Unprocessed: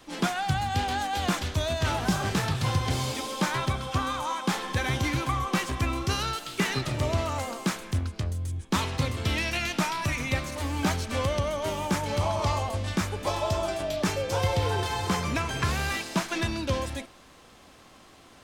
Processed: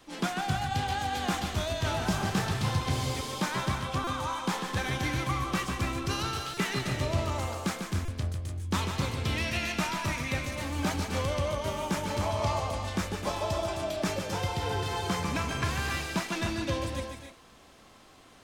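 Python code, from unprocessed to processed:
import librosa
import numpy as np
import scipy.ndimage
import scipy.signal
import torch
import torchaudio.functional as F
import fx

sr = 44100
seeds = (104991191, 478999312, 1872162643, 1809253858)

y = fx.notch_comb(x, sr, f0_hz=560.0, at=(14.19, 14.9))
y = fx.echo_multitap(y, sr, ms=(146, 259, 295), db=(-7.0, -10.0, -10.0))
y = fx.buffer_glitch(y, sr, at_s=(4.04, 6.54, 8.05), block=128, repeats=10)
y = F.gain(torch.from_numpy(y), -4.0).numpy()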